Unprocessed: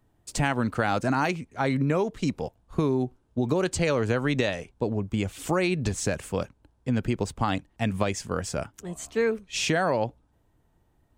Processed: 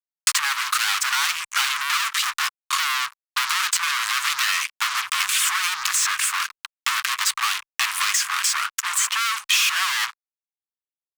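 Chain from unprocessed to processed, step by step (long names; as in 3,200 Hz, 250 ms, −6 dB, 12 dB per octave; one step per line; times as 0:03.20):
fuzz pedal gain 44 dB, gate −50 dBFS
elliptic high-pass filter 1,100 Hz, stop band 50 dB
multiband upward and downward compressor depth 100%
level −1 dB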